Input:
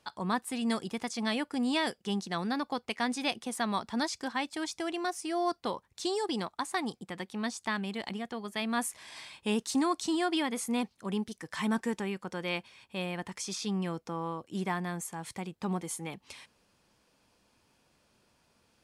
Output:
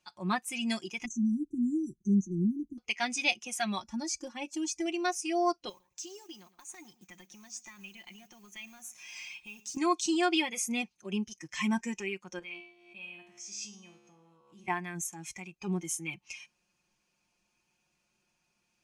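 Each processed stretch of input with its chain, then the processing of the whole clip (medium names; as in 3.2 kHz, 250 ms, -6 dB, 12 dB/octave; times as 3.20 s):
1.05–2.78 s: brick-wall FIR band-stop 400–5800 Hz + tilt EQ -2.5 dB/octave
3.82–4.86 s: peaking EQ 2.9 kHz -7 dB 2.2 oct + comb 3.5 ms, depth 81% + compression 10:1, threshold -28 dBFS
5.69–9.77 s: compression 8:1, threshold -41 dBFS + modulation noise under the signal 17 dB + feedback delay 110 ms, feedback 16%, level -16 dB
12.39–14.68 s: gate -52 dBFS, range -10 dB + feedback comb 70 Hz, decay 1 s, mix 90% + swell ahead of each attack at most 34 dB/s
whole clip: comb 5.6 ms, depth 66%; spectral noise reduction 11 dB; graphic EQ with 31 bands 500 Hz -7 dB, 2.5 kHz +9 dB, 6.3 kHz +10 dB; trim -1 dB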